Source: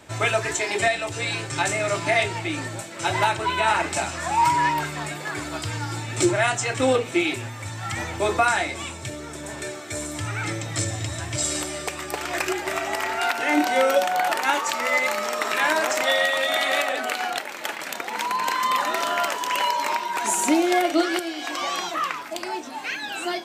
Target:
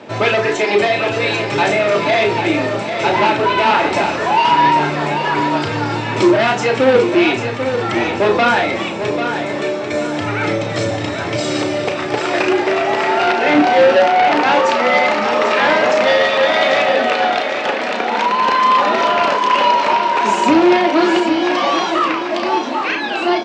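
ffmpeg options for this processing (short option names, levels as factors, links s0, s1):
-filter_complex "[0:a]equalizer=f=580:w=0.79:g=10,asoftclip=type=tanh:threshold=0.168,highpass=f=110:w=0.5412,highpass=f=110:w=1.3066,equalizer=f=220:t=q:w=4:g=9,equalizer=f=420:t=q:w=4:g=3,equalizer=f=680:t=q:w=4:g=-4,equalizer=f=2600:t=q:w=4:g=3,lowpass=f=5300:w=0.5412,lowpass=f=5300:w=1.3066,asplit=2[s0][s1];[s1]adelay=34,volume=0.422[s2];[s0][s2]amix=inputs=2:normalize=0,asplit=2[s3][s4];[s4]aecho=0:1:792|1584|2376|3168|3960:0.398|0.159|0.0637|0.0255|0.0102[s5];[s3][s5]amix=inputs=2:normalize=0,volume=2"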